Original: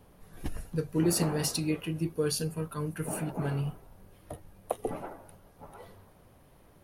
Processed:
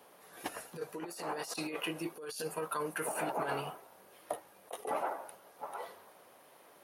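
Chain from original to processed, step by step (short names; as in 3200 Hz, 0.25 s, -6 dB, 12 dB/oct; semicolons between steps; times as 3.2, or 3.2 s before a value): HPF 510 Hz 12 dB/oct; negative-ratio compressor -41 dBFS, ratio -1; dynamic EQ 920 Hz, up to +5 dB, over -51 dBFS, Q 0.84; gain +1 dB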